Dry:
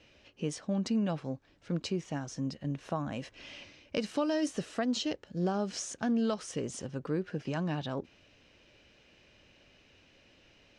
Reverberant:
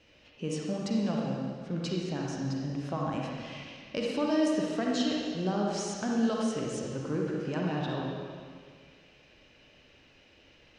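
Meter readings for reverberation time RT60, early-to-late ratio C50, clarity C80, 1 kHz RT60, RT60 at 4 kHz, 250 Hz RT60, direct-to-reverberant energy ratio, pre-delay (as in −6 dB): 1.9 s, −1.5 dB, 0.5 dB, 1.9 s, 1.8 s, 1.9 s, −2.5 dB, 39 ms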